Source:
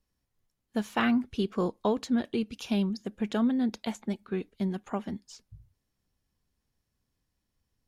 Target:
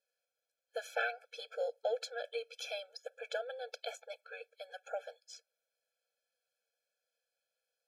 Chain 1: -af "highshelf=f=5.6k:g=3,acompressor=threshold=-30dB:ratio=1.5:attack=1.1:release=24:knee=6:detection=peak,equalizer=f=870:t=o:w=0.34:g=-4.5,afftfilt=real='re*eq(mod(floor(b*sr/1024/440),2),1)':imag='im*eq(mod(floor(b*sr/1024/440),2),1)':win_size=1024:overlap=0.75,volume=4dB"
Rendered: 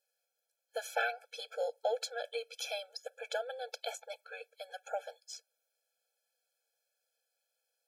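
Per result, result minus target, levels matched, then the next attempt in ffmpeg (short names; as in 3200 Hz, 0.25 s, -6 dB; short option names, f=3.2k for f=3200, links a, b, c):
8000 Hz band +5.0 dB; 1000 Hz band +2.5 dB
-af "highshelf=f=5.6k:g=-8,acompressor=threshold=-30dB:ratio=1.5:attack=1.1:release=24:knee=6:detection=peak,equalizer=f=870:t=o:w=0.34:g=-4.5,afftfilt=real='re*eq(mod(floor(b*sr/1024/440),2),1)':imag='im*eq(mod(floor(b*sr/1024/440),2),1)':win_size=1024:overlap=0.75,volume=4dB"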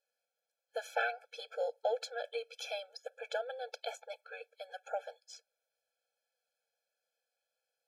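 1000 Hz band +2.5 dB
-af "highshelf=f=5.6k:g=-8,acompressor=threshold=-30dB:ratio=1.5:attack=1.1:release=24:knee=6:detection=peak,equalizer=f=870:t=o:w=0.34:g=-14.5,afftfilt=real='re*eq(mod(floor(b*sr/1024/440),2),1)':imag='im*eq(mod(floor(b*sr/1024/440),2),1)':win_size=1024:overlap=0.75,volume=4dB"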